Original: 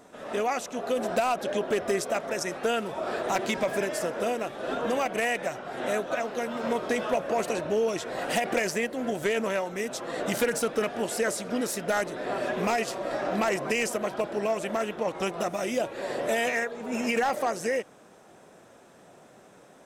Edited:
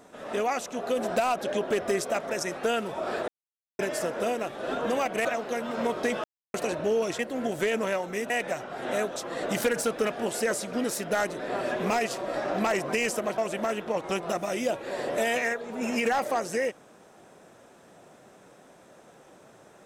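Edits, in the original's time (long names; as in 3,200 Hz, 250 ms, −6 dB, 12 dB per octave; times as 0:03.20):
0:03.28–0:03.79: silence
0:05.25–0:06.11: move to 0:09.93
0:07.10–0:07.40: silence
0:08.05–0:08.82: remove
0:14.15–0:14.49: remove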